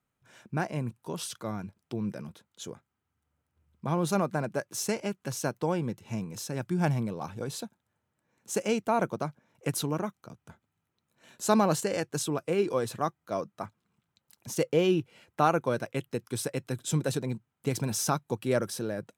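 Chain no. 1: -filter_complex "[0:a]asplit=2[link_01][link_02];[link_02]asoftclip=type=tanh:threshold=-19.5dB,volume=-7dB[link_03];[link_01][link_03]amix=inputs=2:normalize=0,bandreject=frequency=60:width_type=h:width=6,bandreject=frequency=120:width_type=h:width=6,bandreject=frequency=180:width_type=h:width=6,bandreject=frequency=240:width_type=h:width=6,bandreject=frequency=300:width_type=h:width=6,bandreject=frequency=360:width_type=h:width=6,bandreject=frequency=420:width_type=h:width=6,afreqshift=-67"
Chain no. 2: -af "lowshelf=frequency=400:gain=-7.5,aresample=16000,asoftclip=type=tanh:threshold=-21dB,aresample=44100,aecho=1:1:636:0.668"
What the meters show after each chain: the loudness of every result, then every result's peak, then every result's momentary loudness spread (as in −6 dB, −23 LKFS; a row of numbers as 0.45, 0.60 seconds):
−29.0, −34.5 LKFS; −8.0, −17.0 dBFS; 13, 12 LU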